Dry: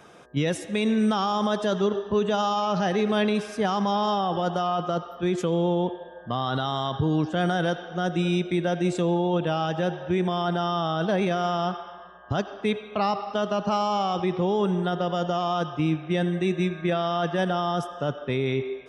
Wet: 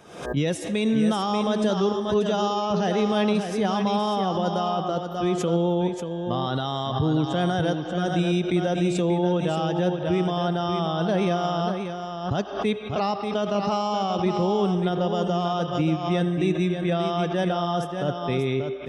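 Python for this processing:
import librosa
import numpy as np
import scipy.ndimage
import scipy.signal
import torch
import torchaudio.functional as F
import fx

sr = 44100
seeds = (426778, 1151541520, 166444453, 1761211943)

p1 = fx.peak_eq(x, sr, hz=1500.0, db=-4.5, octaves=1.5)
p2 = p1 + fx.echo_single(p1, sr, ms=586, db=-7.0, dry=0)
p3 = fx.pre_swell(p2, sr, db_per_s=87.0)
y = p3 * 10.0 ** (1.0 / 20.0)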